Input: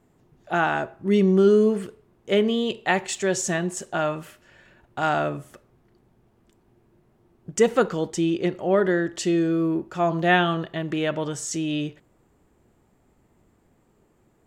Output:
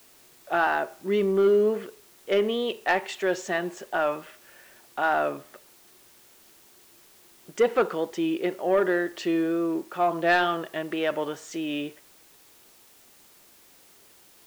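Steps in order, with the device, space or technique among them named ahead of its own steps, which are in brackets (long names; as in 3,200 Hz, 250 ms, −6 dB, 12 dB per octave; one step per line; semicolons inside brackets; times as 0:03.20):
tape answering machine (band-pass filter 360–3,200 Hz; soft clipping −13.5 dBFS, distortion −18 dB; tape wow and flutter; white noise bed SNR 28 dB)
level +1 dB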